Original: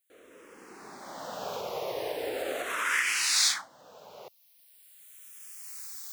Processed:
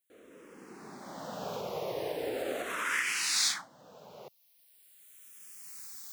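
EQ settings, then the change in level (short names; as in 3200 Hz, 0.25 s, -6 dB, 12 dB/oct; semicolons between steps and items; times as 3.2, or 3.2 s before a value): bell 170 Hz +10 dB 2 oct; -4.0 dB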